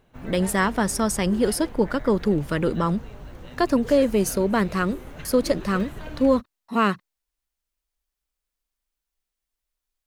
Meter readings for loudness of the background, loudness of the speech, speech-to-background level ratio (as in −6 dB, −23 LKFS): −39.5 LKFS, −23.5 LKFS, 16.0 dB